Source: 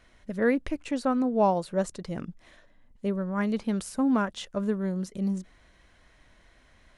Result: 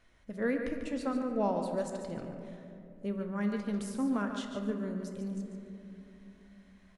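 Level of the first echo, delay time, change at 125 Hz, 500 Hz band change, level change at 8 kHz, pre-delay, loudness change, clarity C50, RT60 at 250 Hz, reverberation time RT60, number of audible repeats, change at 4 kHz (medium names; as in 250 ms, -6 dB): -9.0 dB, 144 ms, -6.5 dB, -6.0 dB, -6.5 dB, 7 ms, -6.5 dB, 4.5 dB, 4.1 s, 3.0 s, 1, -6.5 dB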